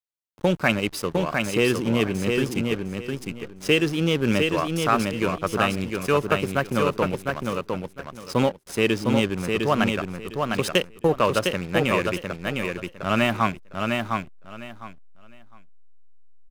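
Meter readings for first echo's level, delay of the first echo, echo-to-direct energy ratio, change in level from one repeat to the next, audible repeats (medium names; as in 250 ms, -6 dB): -4.0 dB, 706 ms, -4.0 dB, -13.5 dB, 3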